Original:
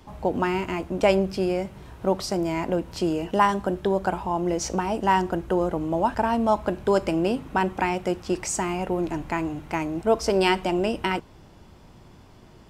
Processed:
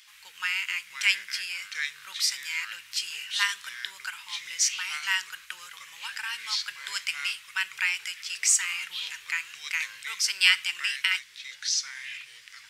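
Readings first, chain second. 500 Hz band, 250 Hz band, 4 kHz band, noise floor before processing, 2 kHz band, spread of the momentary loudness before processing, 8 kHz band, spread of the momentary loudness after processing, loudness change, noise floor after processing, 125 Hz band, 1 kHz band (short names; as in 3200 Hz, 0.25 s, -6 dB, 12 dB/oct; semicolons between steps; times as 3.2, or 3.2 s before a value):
under -40 dB, under -40 dB, +9.0 dB, -50 dBFS, +5.5 dB, 7 LU, +8.5 dB, 15 LU, -2.5 dB, -52 dBFS, under -40 dB, -18.0 dB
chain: echoes that change speed 0.369 s, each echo -5 st, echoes 3, each echo -6 dB; inverse Chebyshev high-pass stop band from 730 Hz, stop band 50 dB; gain +8 dB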